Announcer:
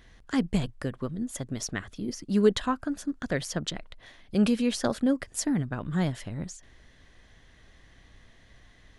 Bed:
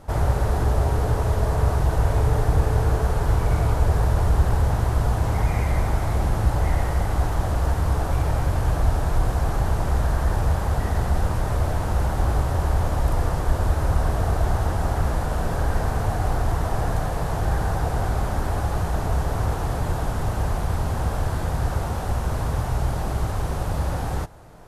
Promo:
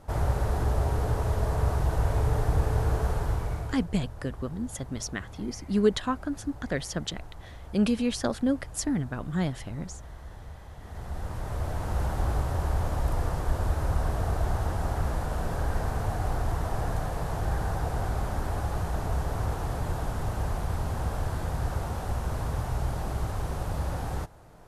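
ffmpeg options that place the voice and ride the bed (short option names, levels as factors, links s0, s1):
-filter_complex "[0:a]adelay=3400,volume=0.891[s0];[1:a]volume=3.55,afade=t=out:st=3.1:d=0.77:silence=0.141254,afade=t=in:st=10.77:d=1.26:silence=0.149624[s1];[s0][s1]amix=inputs=2:normalize=0"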